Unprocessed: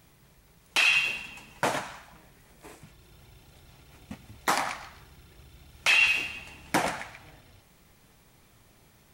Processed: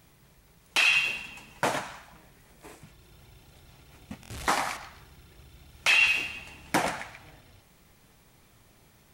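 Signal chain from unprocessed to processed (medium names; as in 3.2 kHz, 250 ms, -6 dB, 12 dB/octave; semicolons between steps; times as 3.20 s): 4.23–4.77 s: one-bit delta coder 64 kbps, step -32.5 dBFS; buffer glitch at 4.21 s, samples 1024, times 3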